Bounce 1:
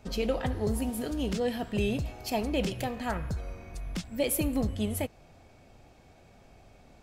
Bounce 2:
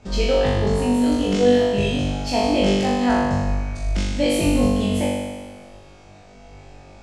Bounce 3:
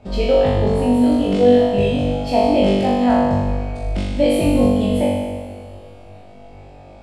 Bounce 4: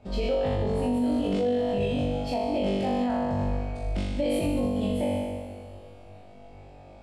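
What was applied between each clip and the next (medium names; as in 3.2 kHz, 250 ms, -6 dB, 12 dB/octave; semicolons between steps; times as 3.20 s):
low-pass 8.2 kHz 24 dB/octave; on a send: flutter echo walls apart 3.5 m, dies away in 1.4 s; on the sum: trim +4.5 dB
fifteen-band graphic EQ 100 Hz +3 dB, 250 Hz +3 dB, 630 Hz +7 dB, 1.6 kHz -4 dB, 6.3 kHz -12 dB; reverberation RT60 3.5 s, pre-delay 88 ms, DRR 13 dB
peak limiter -11.5 dBFS, peak gain reduction 9 dB; trim -7 dB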